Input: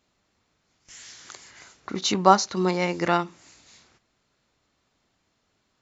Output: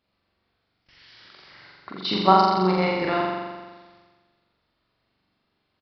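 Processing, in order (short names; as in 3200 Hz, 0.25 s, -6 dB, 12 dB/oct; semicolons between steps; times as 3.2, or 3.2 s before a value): level quantiser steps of 13 dB; flutter echo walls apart 7.4 m, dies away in 1.4 s; downsampling 11025 Hz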